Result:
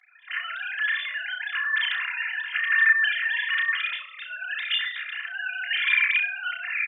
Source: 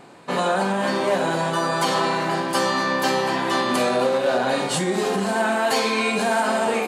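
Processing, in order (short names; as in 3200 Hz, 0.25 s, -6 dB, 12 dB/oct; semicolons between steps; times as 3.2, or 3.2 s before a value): sine-wave speech; limiter -17 dBFS, peak gain reduction 11.5 dB; elliptic high-pass 1700 Hz, stop band 80 dB; comb 2.9 ms, depth 59%; flutter echo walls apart 5.6 m, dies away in 0.3 s; gain +5.5 dB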